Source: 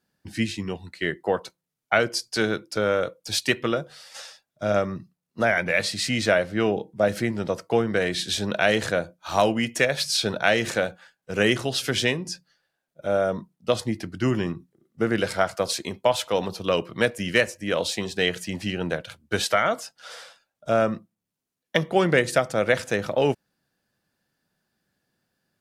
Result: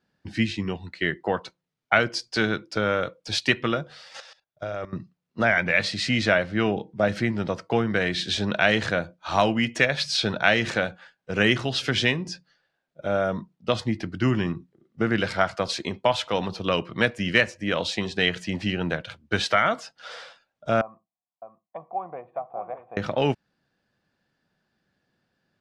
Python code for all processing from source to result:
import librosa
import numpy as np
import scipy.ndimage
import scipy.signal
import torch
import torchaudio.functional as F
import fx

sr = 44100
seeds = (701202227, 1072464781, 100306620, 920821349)

y = fx.chain(x, sr, fx.peak_eq(hz=220.0, db=-11.5, octaves=0.55),
    fx.level_steps(step_db=16), at=(4.2, 4.93))
y = fx.chain(y, sr, fx.formant_cascade(vowel='a'),
    fx.echo_single(ms=608, db=-9.5), at=(20.81, 22.97))
y = scipy.signal.sosfilt(scipy.signal.butter(2, 4400.0, 'lowpass', fs=sr, output='sos'), y)
y = fx.dynamic_eq(y, sr, hz=480.0, q=1.2, threshold_db=-33.0, ratio=4.0, max_db=-6)
y = y * 10.0 ** (2.5 / 20.0)